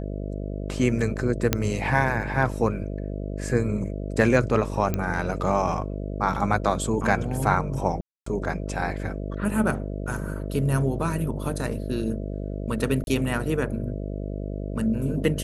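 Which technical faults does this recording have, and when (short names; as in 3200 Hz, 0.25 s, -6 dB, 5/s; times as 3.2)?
buzz 50 Hz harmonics 13 -31 dBFS
1.53 pop -4 dBFS
4.94 pop -12 dBFS
8.01–8.26 gap 0.254 s
13.04–13.07 gap 31 ms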